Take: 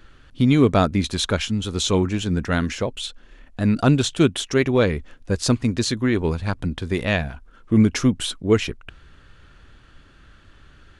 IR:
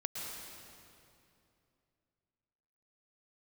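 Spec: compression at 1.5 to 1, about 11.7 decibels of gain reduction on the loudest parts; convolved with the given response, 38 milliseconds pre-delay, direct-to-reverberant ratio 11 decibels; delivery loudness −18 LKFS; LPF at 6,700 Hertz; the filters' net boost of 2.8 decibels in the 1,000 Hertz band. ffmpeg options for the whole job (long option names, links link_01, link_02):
-filter_complex "[0:a]lowpass=6700,equalizer=frequency=1000:width_type=o:gain=4,acompressor=threshold=-45dB:ratio=1.5,asplit=2[link_01][link_02];[1:a]atrim=start_sample=2205,adelay=38[link_03];[link_02][link_03]afir=irnorm=-1:irlink=0,volume=-12.5dB[link_04];[link_01][link_04]amix=inputs=2:normalize=0,volume=13dB"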